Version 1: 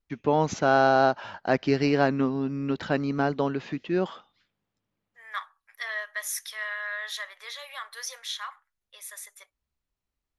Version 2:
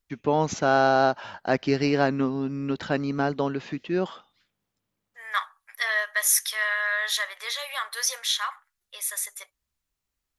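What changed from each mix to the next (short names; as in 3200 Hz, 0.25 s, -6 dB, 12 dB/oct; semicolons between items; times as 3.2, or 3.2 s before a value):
second voice +7.0 dB; master: add high shelf 6600 Hz +7 dB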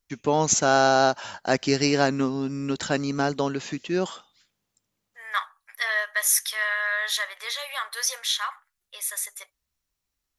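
first voice: remove air absorption 220 m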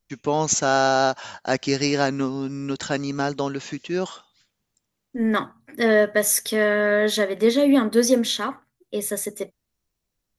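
second voice: remove inverse Chebyshev high-pass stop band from 290 Hz, stop band 60 dB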